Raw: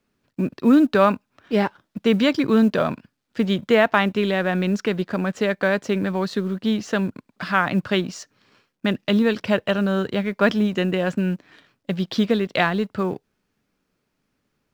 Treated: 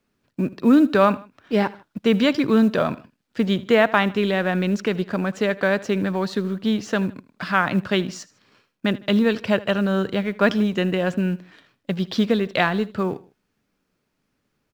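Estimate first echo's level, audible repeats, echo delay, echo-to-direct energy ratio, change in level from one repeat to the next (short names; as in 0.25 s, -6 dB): -20.0 dB, 2, 78 ms, -19.5 dB, -7.5 dB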